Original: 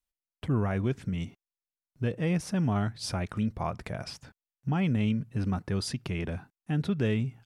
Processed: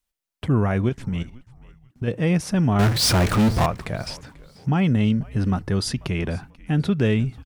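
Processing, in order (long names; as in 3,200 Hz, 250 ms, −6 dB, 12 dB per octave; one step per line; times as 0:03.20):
0:00.89–0:02.08: output level in coarse steps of 16 dB
0:02.79–0:03.66: power curve on the samples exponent 0.35
0:04.83–0:05.92: notch filter 2,400 Hz, Q 9.6
echo with shifted repeats 489 ms, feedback 35%, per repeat −130 Hz, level −21.5 dB
level +7.5 dB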